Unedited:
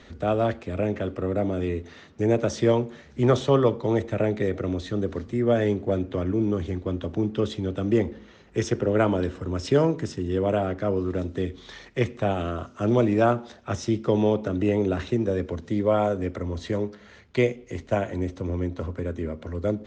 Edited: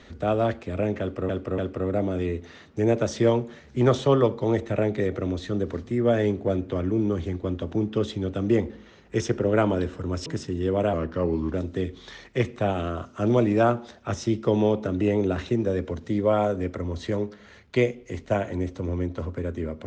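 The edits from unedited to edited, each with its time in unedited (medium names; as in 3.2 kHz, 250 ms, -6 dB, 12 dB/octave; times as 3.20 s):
1.00–1.29 s: loop, 3 plays
9.68–9.95 s: delete
10.62–11.15 s: speed 87%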